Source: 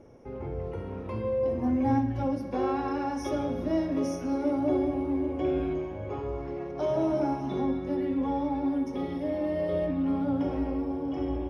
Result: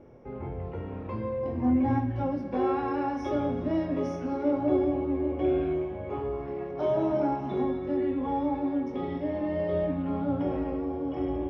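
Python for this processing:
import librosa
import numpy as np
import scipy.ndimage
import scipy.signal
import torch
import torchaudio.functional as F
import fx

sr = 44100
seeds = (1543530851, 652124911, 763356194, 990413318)

y = scipy.signal.sosfilt(scipy.signal.butter(2, 3300.0, 'lowpass', fs=sr, output='sos'), x)
y = fx.doubler(y, sr, ms=24.0, db=-6.5)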